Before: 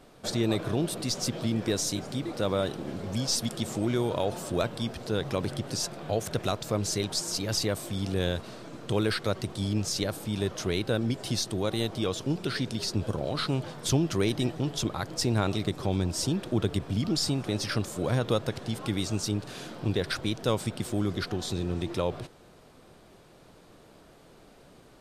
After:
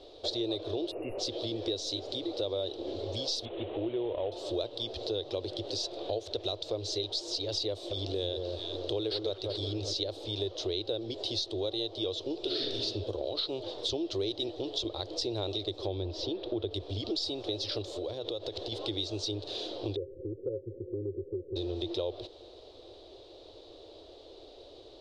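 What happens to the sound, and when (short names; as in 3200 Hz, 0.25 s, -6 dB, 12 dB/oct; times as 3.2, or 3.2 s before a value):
0.91–1.19 spectral delete 2900–9700 Hz
3.45–4.32 CVSD 16 kbps
7.72–9.93 echo with dull and thin repeats by turns 0.194 s, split 1400 Hz, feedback 58%, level -5 dB
12.4–12.83 reverb throw, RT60 0.91 s, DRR -4 dB
15.87–16.71 Gaussian blur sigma 1.9 samples
17.82–18.72 compressor, threshold -32 dBFS
19.96–21.56 rippled Chebyshev low-pass 550 Hz, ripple 9 dB
whole clip: EQ curve 100 Hz 0 dB, 170 Hz -28 dB, 340 Hz +6 dB, 560 Hz +7 dB, 1500 Hz -13 dB, 2300 Hz -7 dB, 3800 Hz +13 dB, 8600 Hz -15 dB, 15000 Hz -28 dB; compressor 3:1, threshold -33 dBFS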